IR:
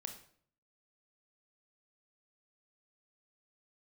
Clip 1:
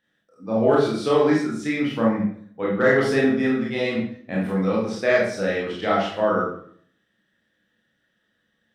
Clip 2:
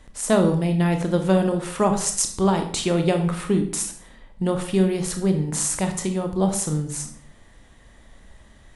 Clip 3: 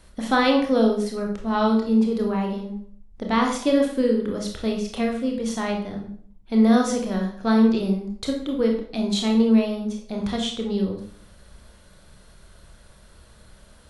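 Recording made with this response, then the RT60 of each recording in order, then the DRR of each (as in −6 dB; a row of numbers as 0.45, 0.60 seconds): 2; 0.55, 0.55, 0.55 seconds; −5.0, 5.0, 1.0 decibels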